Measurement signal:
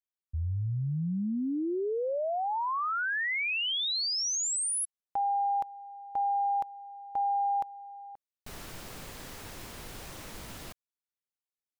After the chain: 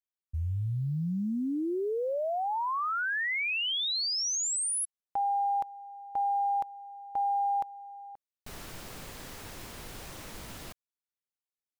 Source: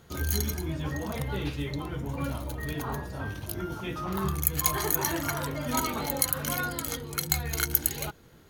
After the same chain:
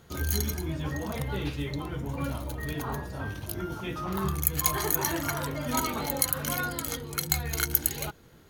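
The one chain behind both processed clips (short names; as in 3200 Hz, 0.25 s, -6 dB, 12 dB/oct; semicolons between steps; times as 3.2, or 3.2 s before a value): short-mantissa float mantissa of 6-bit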